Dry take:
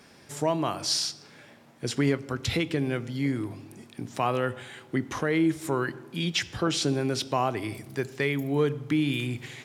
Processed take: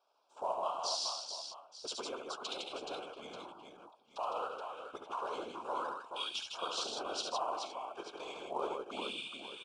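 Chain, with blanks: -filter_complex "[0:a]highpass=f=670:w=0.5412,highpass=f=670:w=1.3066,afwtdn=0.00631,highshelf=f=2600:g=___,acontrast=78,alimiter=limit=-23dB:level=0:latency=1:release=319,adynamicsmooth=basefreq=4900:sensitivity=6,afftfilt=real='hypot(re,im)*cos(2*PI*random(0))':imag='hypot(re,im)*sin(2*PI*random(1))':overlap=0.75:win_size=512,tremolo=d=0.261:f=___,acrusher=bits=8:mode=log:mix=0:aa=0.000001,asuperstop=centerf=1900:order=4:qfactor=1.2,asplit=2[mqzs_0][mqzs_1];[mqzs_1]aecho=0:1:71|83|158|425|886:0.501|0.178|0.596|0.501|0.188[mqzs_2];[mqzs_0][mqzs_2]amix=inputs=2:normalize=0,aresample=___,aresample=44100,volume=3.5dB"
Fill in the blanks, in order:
-9, 72, 22050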